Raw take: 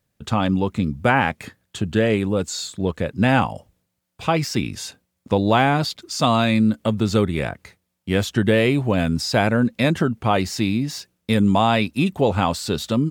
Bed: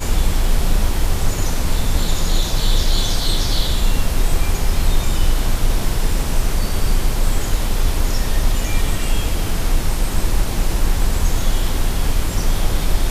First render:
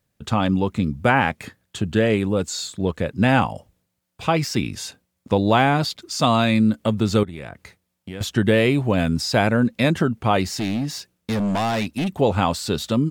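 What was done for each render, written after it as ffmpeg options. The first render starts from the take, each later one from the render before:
-filter_complex "[0:a]asettb=1/sr,asplit=3[a][b][c];[a]atrim=end=7.234[d];[b]atrim=start=7.23:end=8.21,asetpts=PTS-STARTPTS,afade=t=in:d=0.004:c=qsin,afade=t=out:st=0.976:d=0.004:c=qsin,acompressor=threshold=-31dB:ratio=4:attack=3.2:release=140:knee=1:detection=peak[e];[c]atrim=start=8.206[f];[d][e]acrossfade=d=0.004:c1=hsin:c2=qsin[g];[g][f]acrossfade=d=0.004:c1=qsin:c2=hsin,asettb=1/sr,asplit=3[h][i][j];[h]atrim=end=10.574[k];[i]atrim=start=10.57:end=12.14,asetpts=PTS-STARTPTS,afade=t=in:d=0.004:c=qsin,afade=t=out:st=1.566:d=0.004:c=qsin,asoftclip=type=hard:threshold=-19.5dB[l];[j]atrim=start=12.136[m];[k][l]acrossfade=d=0.004:c1=hsin:c2=qsin[n];[n][m]acrossfade=d=0.004:c1=qsin:c2=hsin"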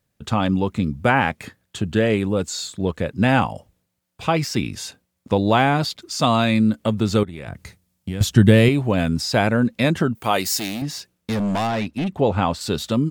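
-filter_complex "[0:a]asettb=1/sr,asplit=3[a][b][c];[a]atrim=end=7.474[d];[b]atrim=start=7.47:end=8.69,asetpts=PTS-STARTPTS,afade=t=in:d=0.004:c=qsin,afade=t=out:st=1.216:d=0.004:c=qsin,bass=f=250:g=10,treble=f=4k:g=6[e];[c]atrim=start=8.686[f];[d][e]acrossfade=d=0.004:c1=hsin:c2=qsin[g];[g][f]acrossfade=d=0.004:c1=qsin:c2=hsin,asettb=1/sr,asplit=3[h][i][j];[h]atrim=end=10.154[k];[i]atrim=start=10.15:end=10.82,asetpts=PTS-STARTPTS,afade=t=in:d=0.004:c=qsin,afade=t=out:st=0.666:d=0.004:c=qsin,aemphasis=mode=production:type=bsi[l];[j]atrim=start=10.816[m];[k][l]acrossfade=d=0.004:c1=hsin:c2=qsin[n];[n][m]acrossfade=d=0.004:c1=qsin:c2=hsin,asettb=1/sr,asplit=3[o][p][q];[o]atrim=end=11.674[r];[p]atrim=start=11.67:end=12.61,asetpts=PTS-STARTPTS,afade=t=in:d=0.004:c=qsin,afade=t=out:st=0.936:d=0.004:c=qsin,lowpass=f=3.1k:p=1[s];[q]atrim=start=12.606[t];[r][s]acrossfade=d=0.004:c1=hsin:c2=qsin[u];[u][t]acrossfade=d=0.004:c1=qsin:c2=hsin"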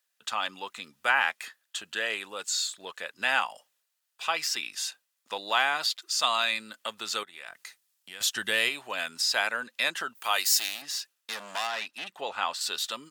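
-af "highpass=1.4k,bandreject=f=2.2k:w=11"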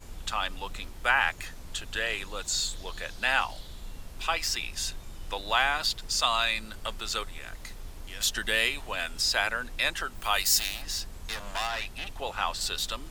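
-filter_complex "[1:a]volume=-25dB[a];[0:a][a]amix=inputs=2:normalize=0"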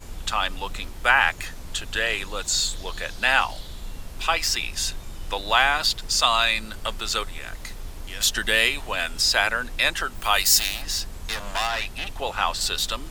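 -af "volume=6dB"

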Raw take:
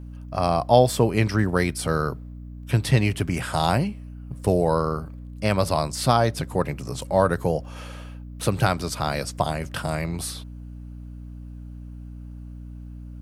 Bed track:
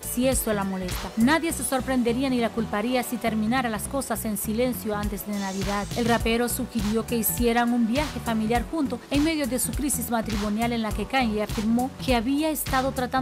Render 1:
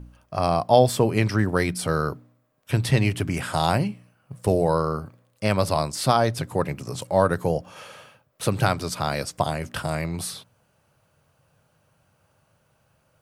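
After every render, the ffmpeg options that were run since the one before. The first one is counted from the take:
-af "bandreject=f=60:t=h:w=4,bandreject=f=120:t=h:w=4,bandreject=f=180:t=h:w=4,bandreject=f=240:t=h:w=4,bandreject=f=300:t=h:w=4"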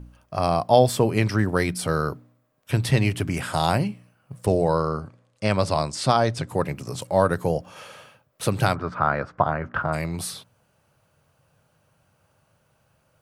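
-filter_complex "[0:a]asettb=1/sr,asplit=3[a][b][c];[a]atrim=end=4.464[d];[b]atrim=start=4.46:end=6.49,asetpts=PTS-STARTPTS,afade=t=in:d=0.004:c=qsin,afade=t=out:st=2.026:d=0.004:c=qsin,lowpass=f=8.8k:w=0.5412,lowpass=f=8.8k:w=1.3066[e];[c]atrim=start=6.486[f];[d][e]acrossfade=d=0.004:c1=hsin:c2=qsin[g];[g][f]acrossfade=d=0.004:c1=qsin:c2=hsin,asplit=3[h][i][j];[h]afade=t=out:st=8.74:d=0.02[k];[i]lowpass=f=1.4k:t=q:w=2.9,afade=t=in:st=8.74:d=0.02,afade=t=out:st=9.92:d=0.02[l];[j]afade=t=in:st=9.92:d=0.02[m];[k][l][m]amix=inputs=3:normalize=0"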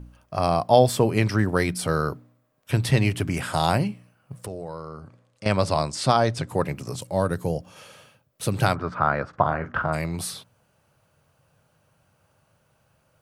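-filter_complex "[0:a]asettb=1/sr,asplit=3[a][b][c];[a]atrim=end=4.454[d];[b]atrim=start=4.45:end=5.46,asetpts=PTS-STARTPTS,afade=t=in:d=0.004:c=qsin,afade=t=out:st=1.006:d=0.004:c=qsin,acompressor=threshold=-42dB:ratio=2:attack=3.2:release=140:knee=1:detection=peak[e];[c]atrim=start=5.456[f];[d][e]acrossfade=d=0.004:c1=hsin:c2=qsin[g];[g][f]acrossfade=d=0.004:c1=qsin:c2=hsin,asettb=1/sr,asplit=3[h][i][j];[h]atrim=end=6.964[k];[i]atrim=start=6.96:end=8.54,asetpts=PTS-STARTPTS,afade=t=in:d=0.004:c=qsin,afade=t=out:st=1.576:d=0.004:c=qsin,equalizer=f=1.1k:w=0.43:g=-6.5[l];[j]atrim=start=8.536[m];[k][l]acrossfade=d=0.004:c1=hsin:c2=qsin[n];[n][m]acrossfade=d=0.004:c1=qsin:c2=hsin,asettb=1/sr,asplit=3[o][p][q];[o]atrim=end=9.294[r];[p]atrim=start=9.29:end=9.89,asetpts=PTS-STARTPTS,afade=t=in:d=0.004:c=qsin,afade=t=out:st=0.596:d=0.004:c=qsin,asplit=2[s][t];[t]adelay=42,volume=-11dB[u];[s][u]amix=inputs=2:normalize=0,atrim=end_sample=26460[v];[q]atrim=start=9.886[w];[r][v]acrossfade=d=0.004:c1=hsin:c2=qsin[x];[x][w]acrossfade=d=0.004:c1=qsin:c2=hsin"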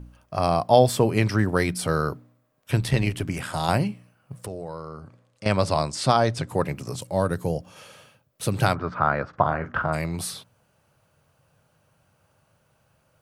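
-filter_complex "[0:a]asettb=1/sr,asplit=3[a][b][c];[a]atrim=end=2.804[d];[b]atrim=start=2.8:end=3.69,asetpts=PTS-STARTPTS,afade=t=in:d=0.004:c=qsin,afade=t=out:st=0.886:d=0.004:c=qsin,tremolo=f=78:d=0.519[e];[c]atrim=start=3.686[f];[d][e]acrossfade=d=0.004:c1=hsin:c2=qsin[g];[g][f]acrossfade=d=0.004:c1=qsin:c2=hsin,asettb=1/sr,asplit=3[h][i][j];[h]atrim=end=8.734[k];[i]atrim=start=8.73:end=9.36,asetpts=PTS-STARTPTS,afade=t=in:d=0.004:c=qsin,afade=t=out:st=0.626:d=0.004:c=qsin,lowpass=5.7k[l];[j]atrim=start=9.356[m];[k][l]acrossfade=d=0.004:c1=hsin:c2=qsin[n];[n][m]acrossfade=d=0.004:c1=qsin:c2=hsin"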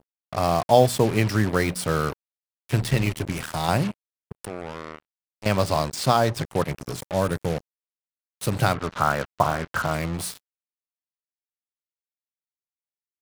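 -af "acrusher=bits=4:mix=0:aa=0.5"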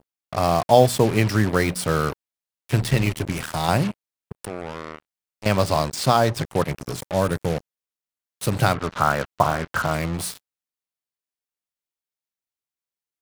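-af "volume=2dB,alimiter=limit=-2dB:level=0:latency=1"

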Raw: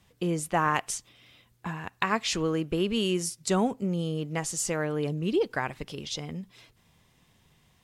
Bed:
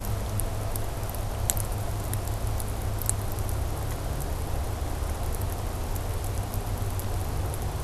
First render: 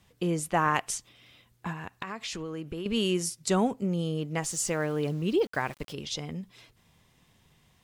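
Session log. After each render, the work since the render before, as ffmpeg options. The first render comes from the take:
-filter_complex "[0:a]asettb=1/sr,asplit=3[a][b][c];[a]atrim=end=1.724[d];[b]atrim=start=1.72:end=2.86,asetpts=PTS-STARTPTS,afade=t=in:d=0.004:c=qsin,afade=t=out:st=1.136:d=0.004:c=qsin,acompressor=threshold=-33dB:ratio=5:attack=3.2:release=140:knee=1:detection=peak[e];[c]atrim=start=2.856[f];[d][e]acrossfade=d=0.004:c1=hsin:c2=qsin[g];[g][f]acrossfade=d=0.004:c1=qsin:c2=hsin,asettb=1/sr,asplit=3[h][i][j];[h]atrim=end=4.434[k];[i]atrim=start=4.43:end=5.93,asetpts=PTS-STARTPTS,afade=t=in:d=0.004:c=qsin,afade=t=out:st=1.496:d=0.004:c=qsin,aeval=exprs='val(0)*gte(abs(val(0)),0.00531)':c=same[l];[j]atrim=start=5.926[m];[k][l]acrossfade=d=0.004:c1=hsin:c2=qsin[n];[n][m]acrossfade=d=0.004:c1=qsin:c2=hsin"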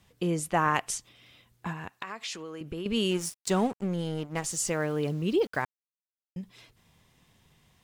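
-filter_complex "[0:a]asettb=1/sr,asplit=3[a][b][c];[a]atrim=end=1.904[d];[b]atrim=start=1.9:end=2.61,asetpts=PTS-STARTPTS,afade=t=in:d=0.004:c=qsin,afade=t=out:st=0.706:d=0.004:c=qsin,highpass=f=440:p=1[e];[c]atrim=start=2.606[f];[d][e]acrossfade=d=0.004:c1=hsin:c2=qsin[g];[g][f]acrossfade=d=0.004:c1=qsin:c2=hsin,asettb=1/sr,asplit=3[h][i][j];[h]atrim=end=3.114[k];[i]atrim=start=3.11:end=4.44,asetpts=PTS-STARTPTS,afade=t=in:d=0.004:c=qsin,afade=t=out:st=1.326:d=0.004:c=qsin,aeval=exprs='sgn(val(0))*max(abs(val(0))-0.00891,0)':c=same[l];[j]atrim=start=4.436[m];[k][l]acrossfade=d=0.004:c1=hsin:c2=qsin[n];[n][m]acrossfade=d=0.004:c1=qsin:c2=hsin,asplit=3[o][p][q];[o]atrim=end=5.65,asetpts=PTS-STARTPTS,afade=t=out:st=5.646:d=0.004:c=hsin[r];[p]atrim=start=5.65:end=6.36,asetpts=PTS-STARTPTS,volume=0[s];[q]atrim=start=6.36,asetpts=PTS-STARTPTS,afade=t=in:d=0.004:c=hsin[t];[r][s][t]concat=n=3:v=0:a=1"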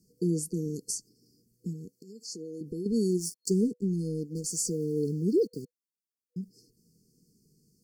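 -af "afftfilt=real='re*(1-between(b*sr/4096,490,4300))':imag='im*(1-between(b*sr/4096,490,4300))':win_size=4096:overlap=0.75,lowshelf=f=130:t=q:w=1.5:g=-9"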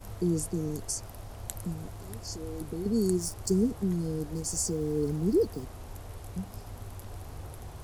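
-filter_complex "[1:a]volume=-12.5dB[a];[0:a][a]amix=inputs=2:normalize=0"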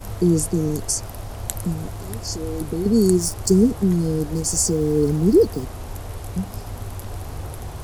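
-af "volume=10.5dB"

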